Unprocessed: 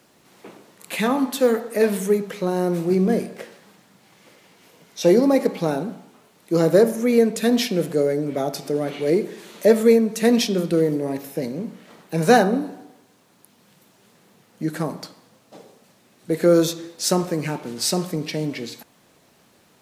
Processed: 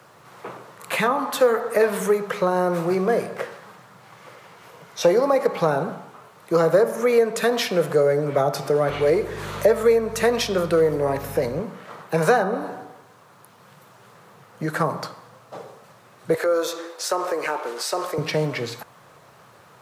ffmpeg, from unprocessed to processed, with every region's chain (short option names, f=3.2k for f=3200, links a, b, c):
-filter_complex "[0:a]asettb=1/sr,asplit=3[a][b][c];[a]atrim=end=8.894[d];[b]atrim=start=8.89:end=11.6,asetpts=PTS-STARTPTS,afade=t=in:d=0.004:c=qsin,afade=t=out:st=2.706:d=0.004:c=qsin,acompressor=mode=upward:threshold=-31dB:ratio=2.5:attack=3.2:release=140:knee=2.83:detection=peak,aeval=exprs='val(0)+0.02*(sin(2*PI*50*n/s)+sin(2*PI*2*50*n/s)/2+sin(2*PI*3*50*n/s)/3+sin(2*PI*4*50*n/s)/4+sin(2*PI*5*50*n/s)/5)':c=same[e];[c]atrim=start=11.596[f];[d][e]acrossfade=d=0.004:c1=hsin:c2=qsin[g];[g][f]acrossfade=d=0.004:c1=qsin:c2=hsin,asettb=1/sr,asplit=3[h][i][j];[h]atrim=end=16.344[k];[i]atrim=start=16.34:end=18.18,asetpts=PTS-STARTPTS,afade=t=in:d=0.004:c=qsin,afade=t=out:st=1.836:d=0.004:c=qsin,highpass=f=350:w=0.5412,highpass=f=350:w=1.3066,acompressor=threshold=-28dB:ratio=2.5:attack=3.2:release=140:knee=1:detection=peak[l];[j]atrim=start=18.176[m];[k][l]acrossfade=d=0.004:c1=hsin:c2=qsin[n];[n][m]acrossfade=d=0.004:c1=qsin:c2=hsin,equalizer=f=1.2k:w=1.1:g=13.5,acrossover=split=120|430[o][p][q];[o]acompressor=threshold=-47dB:ratio=4[r];[p]acompressor=threshold=-29dB:ratio=4[s];[q]acompressor=threshold=-21dB:ratio=4[t];[r][s][t]amix=inputs=3:normalize=0,equalizer=f=125:t=o:w=1:g=12,equalizer=f=250:t=o:w=1:g=-7,equalizer=f=500:t=o:w=1:g=6"